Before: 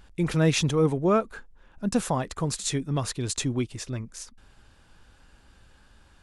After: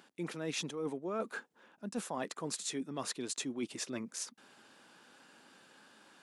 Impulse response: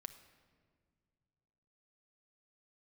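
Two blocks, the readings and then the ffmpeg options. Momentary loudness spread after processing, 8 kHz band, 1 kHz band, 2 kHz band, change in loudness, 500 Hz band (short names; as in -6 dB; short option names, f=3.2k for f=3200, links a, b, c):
10 LU, -7.5 dB, -12.0 dB, -8.5 dB, -13.0 dB, -13.0 dB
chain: -af "highpass=f=210:w=0.5412,highpass=f=210:w=1.3066,areverse,acompressor=threshold=-36dB:ratio=8,areverse,volume=1dB"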